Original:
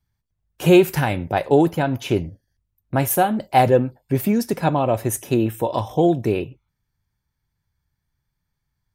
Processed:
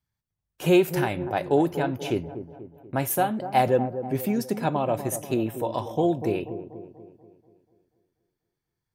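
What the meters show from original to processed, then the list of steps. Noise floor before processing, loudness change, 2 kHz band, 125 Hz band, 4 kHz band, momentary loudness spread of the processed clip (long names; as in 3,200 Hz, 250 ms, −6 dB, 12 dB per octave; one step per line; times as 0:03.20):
−78 dBFS, −6.0 dB, −5.5 dB, −7.5 dB, −5.5 dB, 15 LU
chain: low-shelf EQ 74 Hz −11.5 dB
on a send: delay with a low-pass on its return 242 ms, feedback 49%, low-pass 930 Hz, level −10 dB
on the sum: level −5.5 dB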